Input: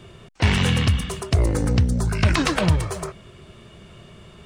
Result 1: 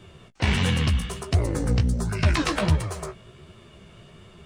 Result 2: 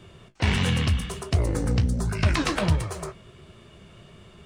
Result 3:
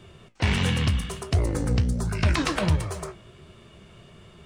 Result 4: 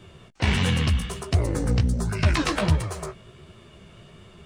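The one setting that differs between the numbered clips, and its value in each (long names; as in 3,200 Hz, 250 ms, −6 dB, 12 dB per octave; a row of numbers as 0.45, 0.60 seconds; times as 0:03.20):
flanger, regen: +15, −48, +66, −8%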